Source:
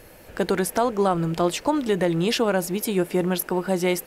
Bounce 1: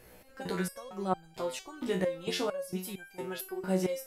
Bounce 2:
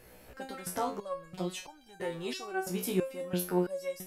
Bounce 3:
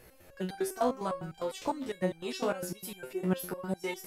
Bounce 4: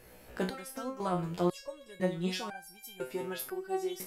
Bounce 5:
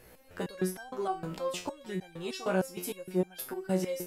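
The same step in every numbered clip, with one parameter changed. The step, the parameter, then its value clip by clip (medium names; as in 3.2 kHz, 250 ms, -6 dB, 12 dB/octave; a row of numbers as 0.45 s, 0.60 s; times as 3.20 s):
resonator arpeggio, rate: 4.4 Hz, 3 Hz, 9.9 Hz, 2 Hz, 6.5 Hz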